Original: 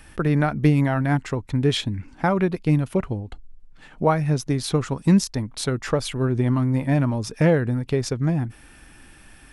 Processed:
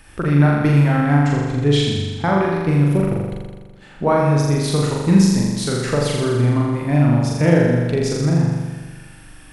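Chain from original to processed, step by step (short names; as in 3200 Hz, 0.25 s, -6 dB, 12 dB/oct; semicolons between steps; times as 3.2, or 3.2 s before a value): 0.96–2.35 LPF 9500 Hz 24 dB/oct; flutter echo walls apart 7.1 m, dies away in 1.4 s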